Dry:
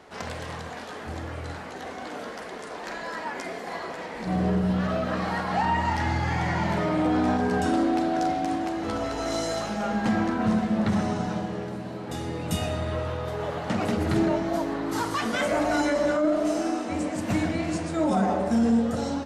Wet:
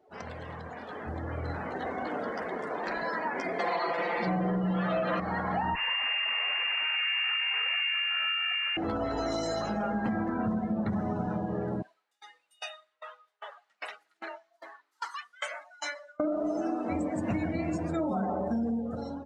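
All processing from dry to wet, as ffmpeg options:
-filter_complex "[0:a]asettb=1/sr,asplit=3[s0][s1][s2];[s0]atrim=end=3.594[s3];[s1]atrim=start=3.59:end=5.2,asetpts=PTS-STARTPTS,afade=t=in:d=0.004:c=qsin,afade=t=out:st=1.606:d=0.004:c=qsin,equalizer=f=1600:t=o:w=0.4:g=-3.5,aecho=1:1:5.8:0.96,atrim=end_sample=71001,asplit=2[s4][s5];[s5]highpass=f=720:p=1,volume=6.31,asoftclip=type=tanh:threshold=0.282[s6];[s4][s6]amix=inputs=2:normalize=0,lowpass=f=4700:p=1,volume=0.501[s7];[s2]atrim=start=5.196[s8];[s3][s7]acrossfade=d=0.004:c1=hsin:c2=qsin[s9];[s9][s8]acrossfade=d=0.004:c1=qsin:c2=hsin,asettb=1/sr,asplit=3[s10][s11][s12];[s10]atrim=end=5.754[s13];[s11]atrim=start=5.75:end=8.77,asetpts=PTS-STARTPTS,afade=t=in:d=0.004:c=qsin,afade=t=out:st=3.016:d=0.004:c=qsin,equalizer=f=780:t=o:w=0.23:g=3.5,aeval=exprs='abs(val(0))':c=same,lowpass=f=2400:t=q:w=0.5098,lowpass=f=2400:t=q:w=0.6013,lowpass=f=2400:t=q:w=0.9,lowpass=f=2400:t=q:w=2.563,afreqshift=-2800[s14];[s12]atrim=start=8.766[s15];[s13][s14]acrossfade=d=0.004:c1=hsin:c2=qsin[s16];[s16][s15]acrossfade=d=0.004:c1=qsin:c2=hsin,asettb=1/sr,asplit=3[s17][s18][s19];[s17]atrim=end=11.824[s20];[s18]atrim=start=11.82:end=16.2,asetpts=PTS-STARTPTS,afade=t=in:d=0.004:c=qsin,afade=t=out:st=4.376:d=0.004:c=qsin,highpass=1400,aeval=exprs='val(0)*pow(10,-26*if(lt(mod(2.5*n/s,1),2*abs(2.5)/1000),1-mod(2.5*n/s,1)/(2*abs(2.5)/1000),(mod(2.5*n/s,1)-2*abs(2.5)/1000)/(1-2*abs(2.5)/1000))/20)':c=same[s21];[s19]atrim=start=16.196[s22];[s20][s21]acrossfade=d=0.004:c1=hsin:c2=qsin[s23];[s23][s22]acrossfade=d=0.004:c1=qsin:c2=hsin,acompressor=threshold=0.0251:ratio=5,afftdn=nr=22:nf=-43,dynaudnorm=f=810:g=3:m=2.66,volume=0.596"

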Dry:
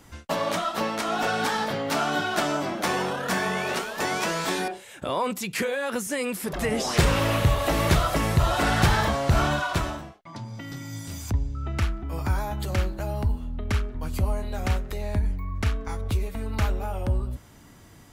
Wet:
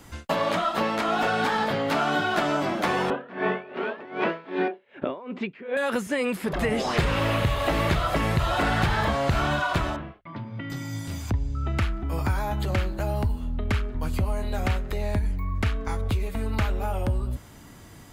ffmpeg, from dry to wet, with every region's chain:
-filter_complex "[0:a]asettb=1/sr,asplit=3[s0][s1][s2];[s0]atrim=end=3.104[s3];[s1]atrim=start=3.1:end=5.77,asetpts=PTS-STARTPTS,afade=t=in:d=0.004:c=qsin,afade=t=out:st=2.666:d=0.004:c=qsin,highpass=140,equalizer=f=260:t=q:w=4:g=8,equalizer=f=390:t=q:w=4:g=8,equalizer=f=580:t=q:w=4:g=4,lowpass=f=2800:w=0.5412,lowpass=f=2800:w=1.3066,aeval=exprs='val(0)*pow(10,-23*(0.5-0.5*cos(2*PI*2.6*n/s))/20)':c=same[s4];[s2]atrim=start=5.766[s5];[s3][s4]acrossfade=d=0.004:c1=hsin:c2=qsin[s6];[s6][s5]acrossfade=d=0.004:c1=qsin:c2=hsin,asettb=1/sr,asplit=3[s7][s8][s9];[s7]atrim=end=9.964[s10];[s8]atrim=start=9.96:end=10.7,asetpts=PTS-STARTPTS,afade=t=in:d=0.004:c=qsin,afade=t=out:st=0.736:d=0.004:c=qsin,lowpass=f=3000:w=0.5412,lowpass=f=3000:w=1.3066,equalizer=f=780:w=2.8:g=-6.5,bandreject=f=60:t=h:w=6,bandreject=f=120:t=h:w=6[s11];[s9]atrim=start=10.696[s12];[s10][s11]acrossfade=d=0.004:c1=hsin:c2=qsin[s13];[s13][s12]acrossfade=d=0.004:c1=qsin:c2=hsin,bandreject=f=5700:w=18,acrossover=split=1500|3900[s14][s15][s16];[s14]acompressor=threshold=0.0562:ratio=4[s17];[s15]acompressor=threshold=0.02:ratio=4[s18];[s16]acompressor=threshold=0.00282:ratio=4[s19];[s17][s18][s19]amix=inputs=3:normalize=0,volume=1.5"

